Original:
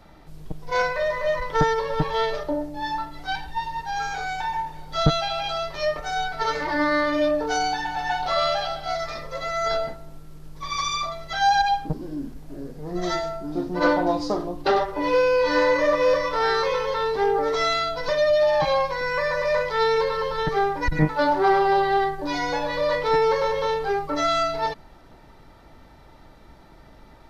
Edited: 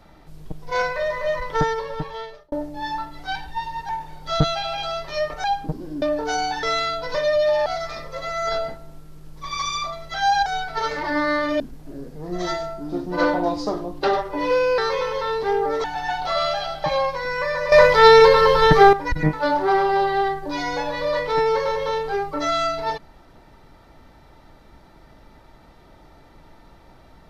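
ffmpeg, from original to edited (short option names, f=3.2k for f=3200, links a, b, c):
-filter_complex "[0:a]asplit=14[a][b][c][d][e][f][g][h][i][j][k][l][m][n];[a]atrim=end=2.52,asetpts=PTS-STARTPTS,afade=t=out:st=1.55:d=0.97[o];[b]atrim=start=2.52:end=3.892,asetpts=PTS-STARTPTS,afade=t=in:d=0.004:c=hsin[p];[c]atrim=start=4.548:end=6.102[q];[d]atrim=start=11.648:end=12.232[r];[e]atrim=start=7.238:end=7.852[s];[f]atrim=start=17.568:end=18.602[t];[g]atrim=start=8.848:end=11.652[u];[h]atrim=start=6.098:end=7.242[v];[i]atrim=start=12.228:end=15.412[w];[j]atrim=start=16.508:end=17.572[x];[k]atrim=start=7.848:end=8.852[y];[l]atrim=start=18.598:end=19.482[z];[m]atrim=start=19.478:end=20.692,asetpts=PTS-STARTPTS,volume=11dB[aa];[n]atrim=start=20.688[ab];[o][p]concat=n=2:v=0:a=1[ac];[ac][q]acrossfade=d=0.004:c1=hsin:c2=hsin[ad];[ad][r]acrossfade=d=0.004:c1=hsin:c2=hsin[ae];[ae][s]acrossfade=d=0.004:c1=hsin:c2=hsin[af];[af][t]acrossfade=d=0.004:c1=hsin:c2=hsin[ag];[ag][u]acrossfade=d=0.004:c1=hsin:c2=hsin[ah];[ah][v]acrossfade=d=0.004:c1=hsin:c2=hsin[ai];[ai][w]acrossfade=d=0.004:c1=hsin:c2=hsin[aj];[aj][x]acrossfade=d=0.004:c1=hsin:c2=hsin[ak];[ak][y]acrossfade=d=0.004:c1=hsin:c2=hsin[al];[al][z]acrossfade=d=0.004:c1=hsin:c2=hsin[am];[am][aa]acrossfade=d=0.004:c1=hsin:c2=hsin[an];[an][ab]acrossfade=d=0.004:c1=hsin:c2=hsin"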